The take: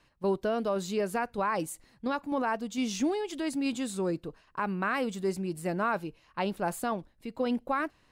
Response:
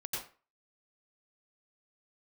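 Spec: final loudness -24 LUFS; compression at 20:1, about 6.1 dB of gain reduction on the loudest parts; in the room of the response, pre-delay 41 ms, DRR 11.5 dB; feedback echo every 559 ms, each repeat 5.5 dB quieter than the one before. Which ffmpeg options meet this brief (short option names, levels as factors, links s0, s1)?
-filter_complex "[0:a]acompressor=threshold=0.0316:ratio=20,aecho=1:1:559|1118|1677|2236|2795|3354|3913:0.531|0.281|0.149|0.079|0.0419|0.0222|0.0118,asplit=2[s0][s1];[1:a]atrim=start_sample=2205,adelay=41[s2];[s1][s2]afir=irnorm=-1:irlink=0,volume=0.224[s3];[s0][s3]amix=inputs=2:normalize=0,volume=3.35"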